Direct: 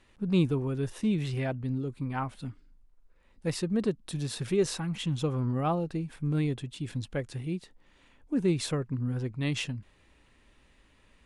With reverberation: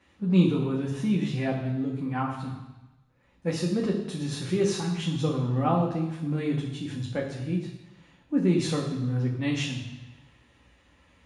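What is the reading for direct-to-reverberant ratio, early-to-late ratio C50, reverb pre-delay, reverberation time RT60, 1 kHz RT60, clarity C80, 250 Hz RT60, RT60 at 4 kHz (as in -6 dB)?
-2.0 dB, 6.0 dB, 3 ms, 1.1 s, 1.1 s, 8.0 dB, 1.0 s, 1.1 s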